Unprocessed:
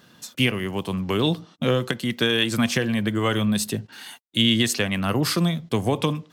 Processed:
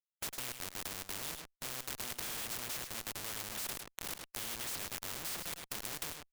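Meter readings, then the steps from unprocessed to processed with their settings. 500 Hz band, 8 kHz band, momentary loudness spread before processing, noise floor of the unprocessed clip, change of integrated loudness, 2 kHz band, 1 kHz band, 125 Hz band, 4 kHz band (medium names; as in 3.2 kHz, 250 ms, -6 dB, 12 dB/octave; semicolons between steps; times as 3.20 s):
-25.0 dB, -7.0 dB, 8 LU, -55 dBFS, -16.5 dB, -17.5 dB, -16.0 dB, -29.0 dB, -18.0 dB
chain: peaking EQ 12 kHz +12.5 dB 1.4 oct; reverb removal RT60 0.8 s; chorus 0.92 Hz, delay 20 ms, depth 4.6 ms; peaking EQ 280 Hz -9.5 dB 2.4 oct; in parallel at -1 dB: compression 6:1, threshold -34 dBFS, peak gain reduction 15.5 dB; on the sum: Schmitt trigger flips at -27.5 dBFS; on a send: delay 104 ms -18.5 dB; on the sum: spectrum-flattening compressor 4:1; trim +1.5 dB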